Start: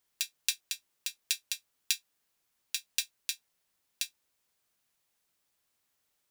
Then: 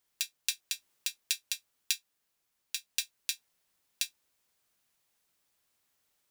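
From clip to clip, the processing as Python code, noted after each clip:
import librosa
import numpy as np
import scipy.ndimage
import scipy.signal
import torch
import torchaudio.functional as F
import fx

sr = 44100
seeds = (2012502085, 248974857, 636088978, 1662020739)

y = fx.rider(x, sr, range_db=10, speed_s=0.5)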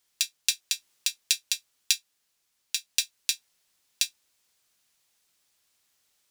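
y = fx.peak_eq(x, sr, hz=5400.0, db=7.0, octaves=2.6)
y = F.gain(torch.from_numpy(y), 1.0).numpy()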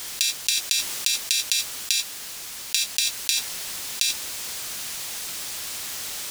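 y = fx.env_flatten(x, sr, amount_pct=100)
y = F.gain(torch.from_numpy(y), -1.0).numpy()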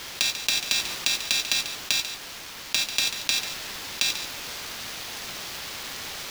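y = scipy.signal.medfilt(x, 5)
y = y + 10.0 ** (-11.0 / 20.0) * np.pad(y, (int(142 * sr / 1000.0), 0))[:len(y)]
y = F.gain(torch.from_numpy(y), 1.5).numpy()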